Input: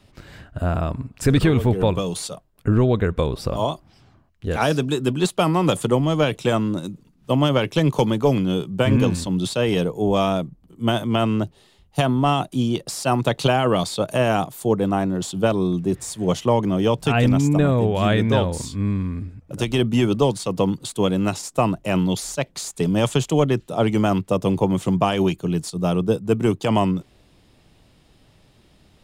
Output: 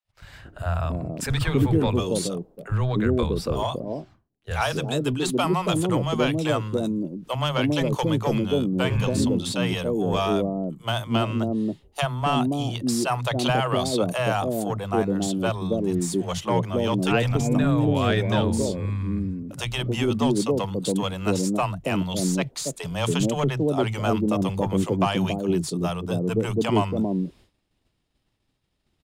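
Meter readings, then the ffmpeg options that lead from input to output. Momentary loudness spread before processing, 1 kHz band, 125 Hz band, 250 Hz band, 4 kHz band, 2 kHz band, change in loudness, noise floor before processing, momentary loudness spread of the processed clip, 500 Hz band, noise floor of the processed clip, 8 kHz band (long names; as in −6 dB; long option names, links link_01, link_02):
8 LU, −3.0 dB, −3.5 dB, −3.0 dB, −1.5 dB, −1.5 dB, −3.5 dB, −56 dBFS, 6 LU, −4.0 dB, −72 dBFS, −1.0 dB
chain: -filter_complex "[0:a]acontrast=47,acrossover=split=150|560[link_01][link_02][link_03];[link_01]adelay=40[link_04];[link_02]adelay=280[link_05];[link_04][link_05][link_03]amix=inputs=3:normalize=0,agate=range=-33dB:threshold=-38dB:ratio=3:detection=peak,volume=-6.5dB"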